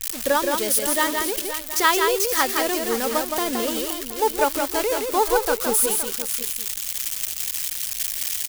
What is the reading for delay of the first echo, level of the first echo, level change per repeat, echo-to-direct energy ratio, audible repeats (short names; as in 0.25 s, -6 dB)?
0.169 s, -4.5 dB, no steady repeat, -3.5 dB, 3